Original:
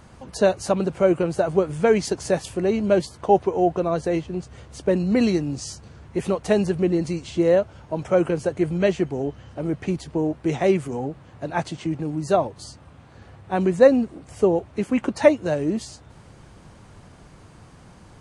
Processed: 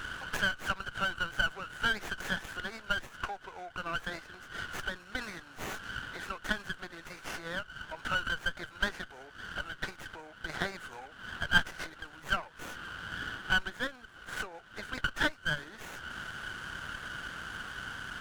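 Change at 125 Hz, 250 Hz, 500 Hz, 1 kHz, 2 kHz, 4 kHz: -17.0, -22.5, -25.5, -10.0, +4.0, +2.0 dB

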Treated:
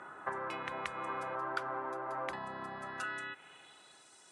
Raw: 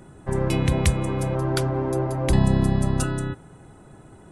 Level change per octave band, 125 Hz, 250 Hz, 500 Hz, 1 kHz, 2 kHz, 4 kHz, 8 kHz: -35.0, -25.5, -16.0, -5.0, -4.5, -14.5, -22.5 dB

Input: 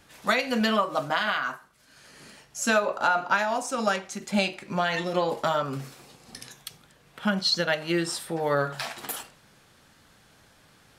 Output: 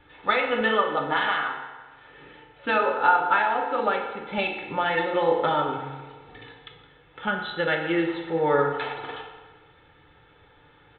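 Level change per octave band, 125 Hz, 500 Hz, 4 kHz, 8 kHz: -2.5 dB, +2.5 dB, -4.0 dB, under -40 dB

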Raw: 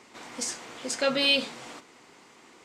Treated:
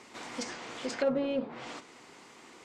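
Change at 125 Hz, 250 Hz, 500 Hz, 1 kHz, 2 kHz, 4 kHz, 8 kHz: +0.5, 0.0, -1.0, -3.5, -10.5, -17.0, -11.5 dB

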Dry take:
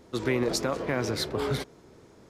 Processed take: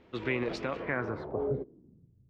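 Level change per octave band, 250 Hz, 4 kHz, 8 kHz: -5.5 dB, -13.5 dB, under -20 dB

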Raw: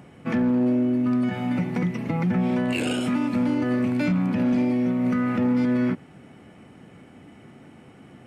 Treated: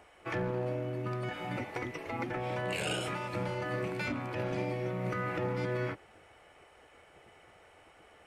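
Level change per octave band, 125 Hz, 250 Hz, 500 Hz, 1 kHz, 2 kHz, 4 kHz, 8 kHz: -8.5 dB, -19.0 dB, -5.0 dB, -4.0 dB, -4.0 dB, -4.0 dB, n/a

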